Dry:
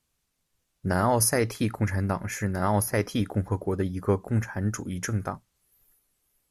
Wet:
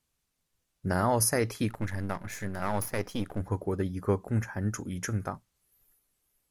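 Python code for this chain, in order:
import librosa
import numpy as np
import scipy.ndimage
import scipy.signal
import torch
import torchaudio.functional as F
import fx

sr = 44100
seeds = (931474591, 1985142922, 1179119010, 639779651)

y = fx.halfwave_gain(x, sr, db=-12.0, at=(1.69, 3.41))
y = y * 10.0 ** (-3.0 / 20.0)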